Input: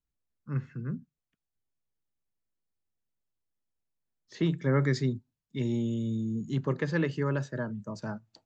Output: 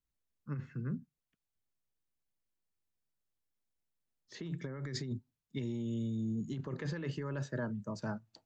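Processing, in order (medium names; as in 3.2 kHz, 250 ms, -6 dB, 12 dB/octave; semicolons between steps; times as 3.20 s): compressor with a negative ratio -32 dBFS, ratio -1; trim -5 dB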